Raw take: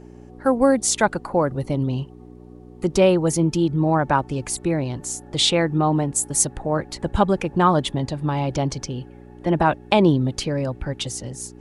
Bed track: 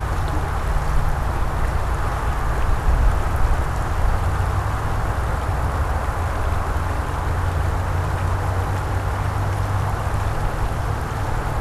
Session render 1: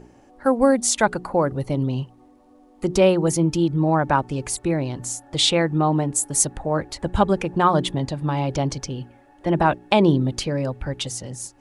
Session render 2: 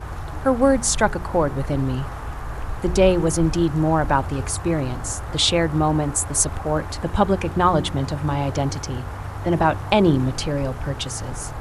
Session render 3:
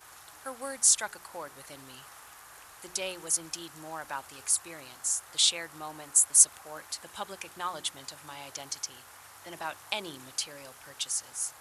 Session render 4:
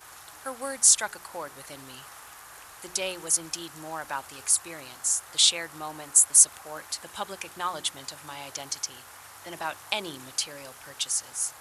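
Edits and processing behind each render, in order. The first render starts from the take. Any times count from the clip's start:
hum removal 60 Hz, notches 7
mix in bed track −9 dB
first difference
level +4 dB; brickwall limiter −3 dBFS, peak gain reduction 2.5 dB

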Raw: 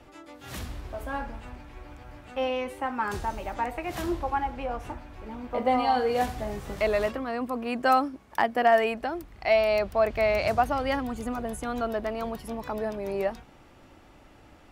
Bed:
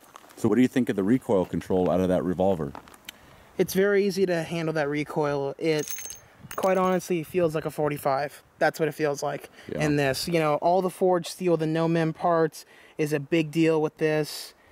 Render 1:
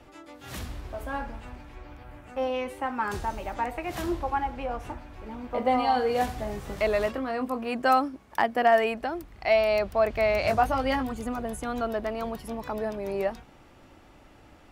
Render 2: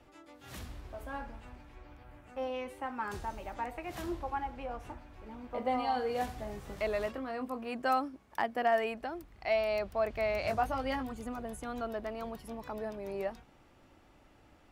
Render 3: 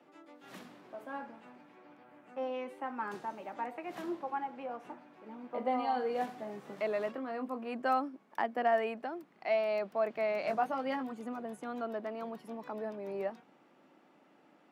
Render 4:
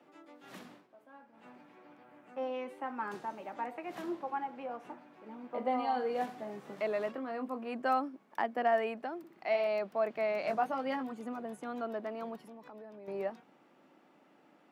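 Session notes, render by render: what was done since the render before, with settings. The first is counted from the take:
0:01.75–0:02.53: parametric band 13,000 Hz → 2,200 Hz −9.5 dB 0.74 octaves; 0:07.14–0:07.74: double-tracking delay 23 ms −8 dB; 0:10.42–0:11.12: double-tracking delay 19 ms −5 dB
level −8 dB
Butterworth high-pass 170 Hz 36 dB per octave; high-shelf EQ 3,800 Hz −11 dB
0:00.73–0:01.46: duck −14 dB, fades 0.14 s; 0:09.18–0:09.67: flutter between parallel walls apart 10.5 metres, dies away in 0.51 s; 0:12.36–0:13.08: downward compressor 3 to 1, threshold −50 dBFS

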